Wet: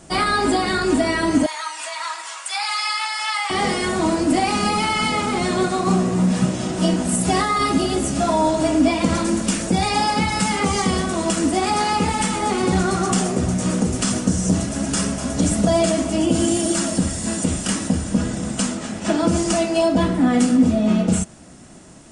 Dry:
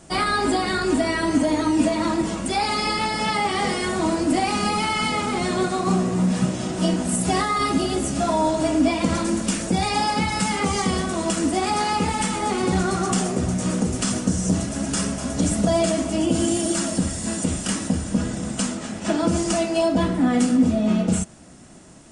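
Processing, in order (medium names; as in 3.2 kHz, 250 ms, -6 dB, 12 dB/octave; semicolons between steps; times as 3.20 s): 1.46–3.50 s: high-pass 990 Hz 24 dB/octave; trim +2.5 dB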